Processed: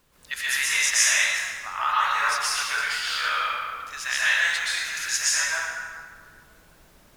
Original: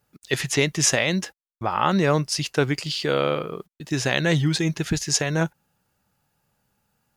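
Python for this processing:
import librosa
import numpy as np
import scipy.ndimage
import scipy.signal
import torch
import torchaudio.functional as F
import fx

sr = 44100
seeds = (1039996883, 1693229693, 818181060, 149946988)

y = scipy.signal.sosfilt(scipy.signal.butter(4, 1300.0, 'highpass', fs=sr, output='sos'), x)
y = fx.peak_eq(y, sr, hz=4500.0, db=-7.5, octaves=2.2)
y = fx.dmg_noise_colour(y, sr, seeds[0], colour='pink', level_db=-65.0)
y = fx.rev_plate(y, sr, seeds[1], rt60_s=1.8, hf_ratio=0.6, predelay_ms=110, drr_db=-9.5)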